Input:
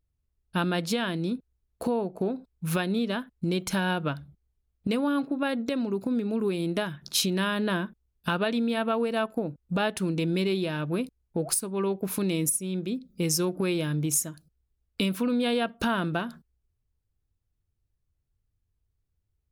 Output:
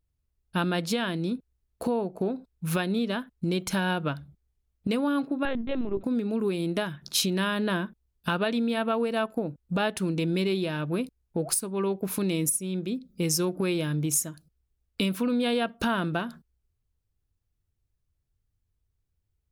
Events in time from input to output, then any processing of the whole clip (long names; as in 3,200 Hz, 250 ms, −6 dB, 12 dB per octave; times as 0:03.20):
0:05.45–0:06.04: linear-prediction vocoder at 8 kHz pitch kept